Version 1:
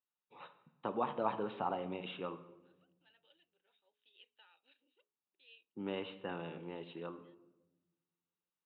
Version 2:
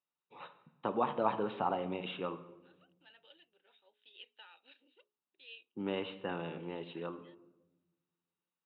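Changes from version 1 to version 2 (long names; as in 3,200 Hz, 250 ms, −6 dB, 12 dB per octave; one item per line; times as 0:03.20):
first voice +3.5 dB
second voice +9.0 dB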